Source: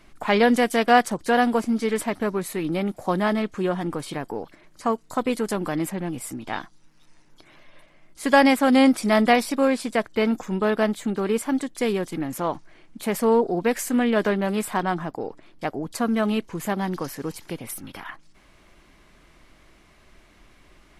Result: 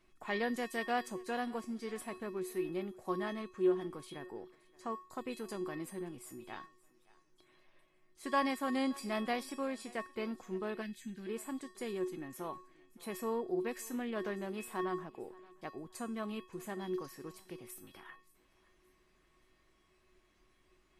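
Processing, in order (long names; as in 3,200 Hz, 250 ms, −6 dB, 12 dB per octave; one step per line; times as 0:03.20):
tuned comb filter 370 Hz, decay 0.38 s, harmonics odd, mix 90%
feedback echo with a high-pass in the loop 574 ms, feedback 34%, high-pass 290 Hz, level −22 dB
gain on a spectral selection 0:10.82–0:11.27, 260–1,500 Hz −15 dB
level +1 dB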